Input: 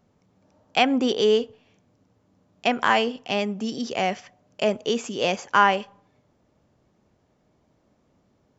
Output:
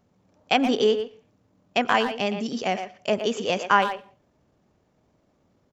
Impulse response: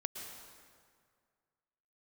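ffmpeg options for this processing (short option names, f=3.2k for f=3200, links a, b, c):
-filter_complex "[0:a]asplit=2[a][b];[b]adelay=170,highpass=300,lowpass=3.4k,asoftclip=type=hard:threshold=-13dB,volume=-8dB[c];[a][c]amix=inputs=2:normalize=0,asplit=2[d][e];[1:a]atrim=start_sample=2205,afade=t=out:st=0.35:d=0.01,atrim=end_sample=15876[f];[e][f]afir=irnorm=-1:irlink=0,volume=-15.5dB[g];[d][g]amix=inputs=2:normalize=0,atempo=1.5,volume=-1.5dB"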